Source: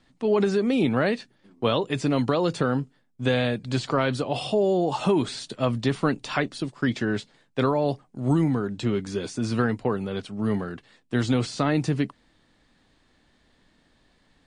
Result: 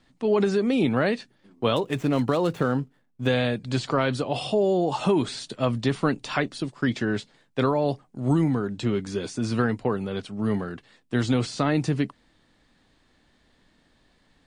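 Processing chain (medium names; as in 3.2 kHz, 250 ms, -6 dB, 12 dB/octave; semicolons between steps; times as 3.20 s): 1.76–3.27 s: median filter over 9 samples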